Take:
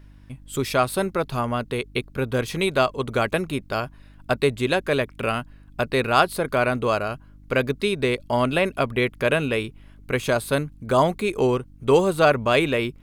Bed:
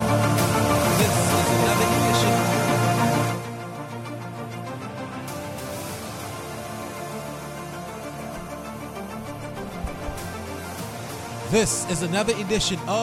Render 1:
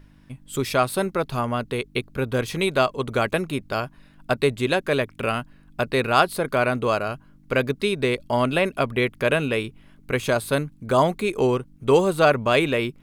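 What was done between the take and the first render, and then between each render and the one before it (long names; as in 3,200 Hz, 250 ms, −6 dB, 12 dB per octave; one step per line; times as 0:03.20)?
hum removal 50 Hz, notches 2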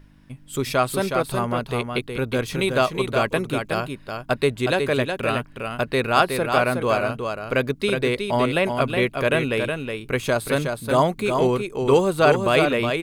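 single-tap delay 367 ms −5.5 dB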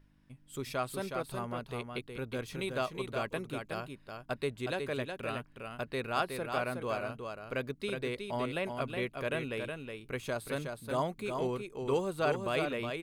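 level −14 dB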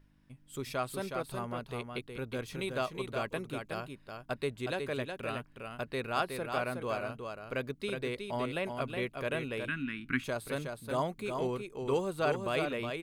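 0:09.68–0:10.24: drawn EQ curve 110 Hz 0 dB, 270 Hz +13 dB, 510 Hz −25 dB, 1,500 Hz +12 dB, 7,100 Hz −6 dB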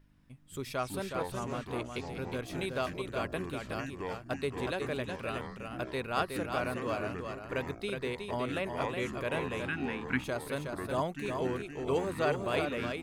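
delay with pitch and tempo change per echo 93 ms, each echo −6 semitones, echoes 2, each echo −6 dB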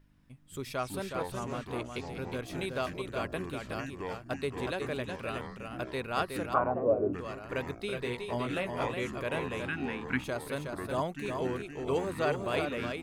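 0:06.53–0:07.13: low-pass with resonance 1,200 Hz → 340 Hz
0:07.88–0:08.94: double-tracking delay 17 ms −5 dB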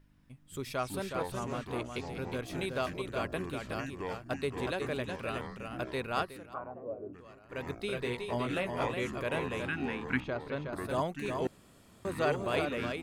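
0:06.15–0:07.71: duck −13.5 dB, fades 0.23 s
0:10.20–0:10.73: high-frequency loss of the air 220 metres
0:11.47–0:12.05: fill with room tone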